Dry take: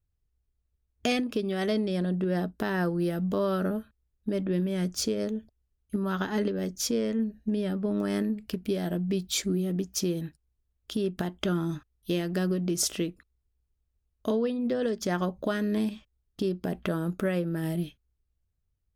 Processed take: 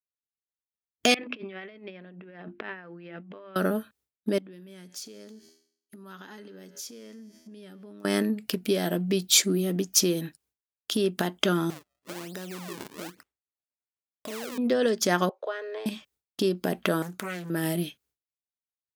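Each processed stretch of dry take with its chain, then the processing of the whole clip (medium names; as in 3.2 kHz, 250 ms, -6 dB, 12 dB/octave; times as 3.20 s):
1.14–3.56 s: hum notches 50/100/150/200/250/300/350 Hz + compressor with a negative ratio -34 dBFS, ratio -0.5 + four-pole ladder low-pass 2.7 kHz, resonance 55%
4.38–8.05 s: peaking EQ 600 Hz -4 dB + feedback comb 81 Hz, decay 1.7 s, mix 50% + compression, threshold -47 dBFS
11.70–14.58 s: compression 5:1, threshold -39 dBFS + decimation with a swept rate 39×, swing 160% 1.1 Hz + transformer saturation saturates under 240 Hz
15.29–15.86 s: steep high-pass 410 Hz 48 dB/octave + compression 1.5:1, threshold -39 dBFS + tape spacing loss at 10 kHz 31 dB
17.02–17.50 s: peaking EQ 440 Hz -11.5 dB 1.6 oct + compression 3:1, threshold -36 dBFS + loudspeaker Doppler distortion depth 0.5 ms
whole clip: expander -59 dBFS; high-pass 170 Hz 12 dB/octave; tilt EQ +1.5 dB/octave; trim +6.5 dB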